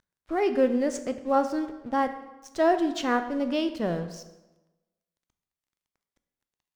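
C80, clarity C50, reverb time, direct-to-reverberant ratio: 13.0 dB, 11.0 dB, 1.1 s, 8.5 dB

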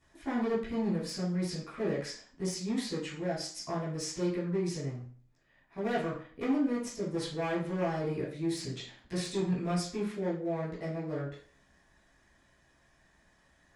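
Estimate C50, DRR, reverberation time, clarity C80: 5.0 dB, −10.5 dB, 0.45 s, 10.5 dB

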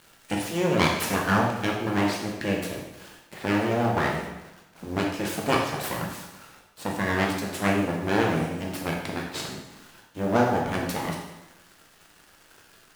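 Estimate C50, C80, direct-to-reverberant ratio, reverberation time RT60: 3.5 dB, 6.0 dB, −1.0 dB, 1.0 s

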